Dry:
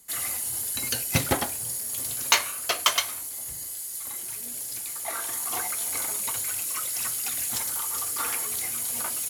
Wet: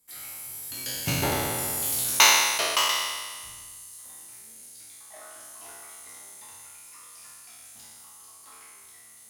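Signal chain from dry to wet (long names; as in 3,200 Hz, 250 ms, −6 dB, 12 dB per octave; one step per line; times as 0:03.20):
peak hold with a decay on every bin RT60 1.76 s
source passing by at 0:02.01, 24 m/s, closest 9.8 metres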